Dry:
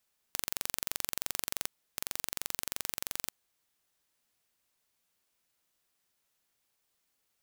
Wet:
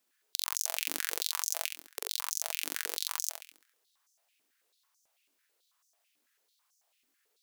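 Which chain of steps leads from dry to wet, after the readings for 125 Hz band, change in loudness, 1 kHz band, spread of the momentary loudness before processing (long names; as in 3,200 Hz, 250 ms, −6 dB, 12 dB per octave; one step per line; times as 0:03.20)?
below −15 dB, +3.0 dB, +4.0 dB, 5 LU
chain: flutter between parallel walls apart 11.7 metres, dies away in 0.62 s
high-pass on a step sequencer 9.1 Hz 280–6,100 Hz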